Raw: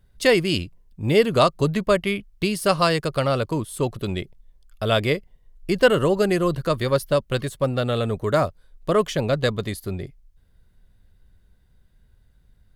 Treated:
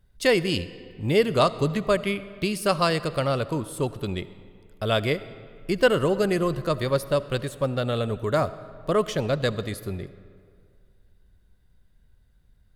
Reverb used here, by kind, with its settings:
comb and all-pass reverb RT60 2.2 s, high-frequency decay 0.65×, pre-delay 30 ms, DRR 15.5 dB
level −3 dB

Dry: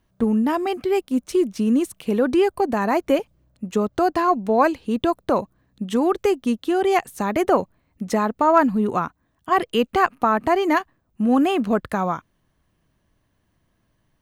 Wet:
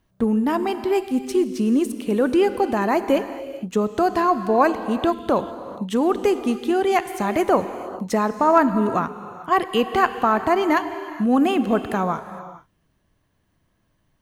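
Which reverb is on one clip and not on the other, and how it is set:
reverb whose tail is shaped and stops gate 480 ms flat, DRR 10 dB

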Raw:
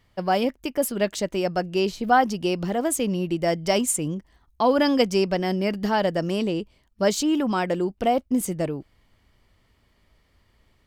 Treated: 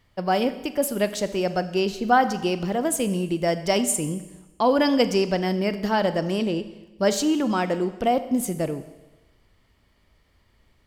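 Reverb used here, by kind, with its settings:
four-comb reverb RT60 1.1 s, combs from 29 ms, DRR 11.5 dB

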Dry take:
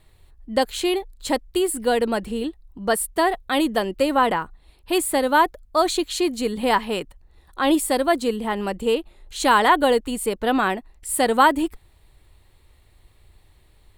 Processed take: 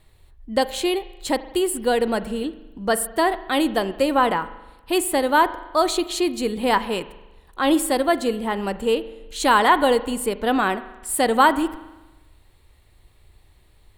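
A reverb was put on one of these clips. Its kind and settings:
spring reverb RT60 1.1 s, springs 40 ms, chirp 35 ms, DRR 14 dB

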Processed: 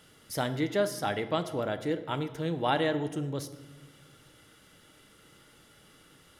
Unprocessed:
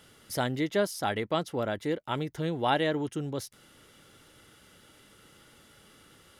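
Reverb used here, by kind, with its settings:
rectangular room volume 760 cubic metres, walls mixed, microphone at 0.51 metres
level −1.5 dB

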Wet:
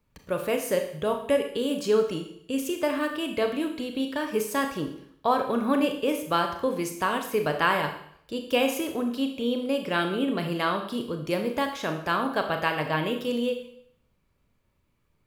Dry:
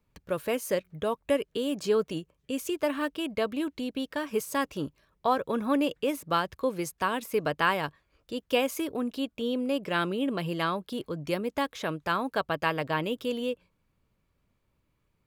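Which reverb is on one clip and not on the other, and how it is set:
four-comb reverb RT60 0.65 s, combs from 26 ms, DRR 4.5 dB
level +1.5 dB

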